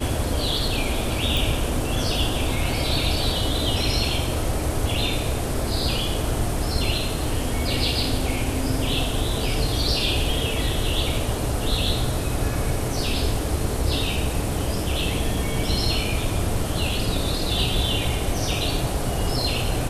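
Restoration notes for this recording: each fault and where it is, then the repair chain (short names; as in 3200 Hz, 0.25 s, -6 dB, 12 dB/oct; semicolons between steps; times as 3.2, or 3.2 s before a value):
1.37 pop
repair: de-click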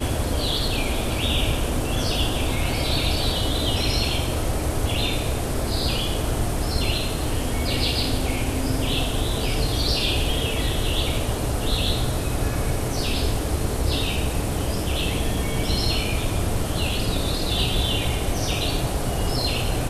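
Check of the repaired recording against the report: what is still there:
none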